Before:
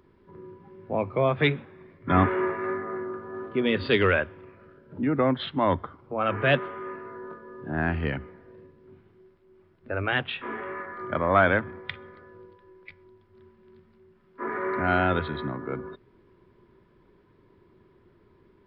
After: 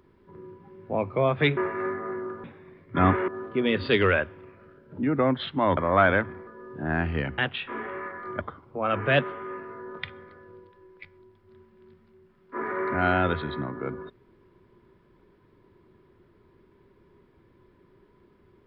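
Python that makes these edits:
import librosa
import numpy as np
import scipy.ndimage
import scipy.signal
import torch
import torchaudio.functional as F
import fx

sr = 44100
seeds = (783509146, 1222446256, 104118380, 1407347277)

y = fx.edit(x, sr, fx.move(start_s=1.57, length_s=0.84, to_s=3.28),
    fx.swap(start_s=5.77, length_s=1.58, other_s=11.15, other_length_s=0.7),
    fx.cut(start_s=8.26, length_s=1.86), tone=tone)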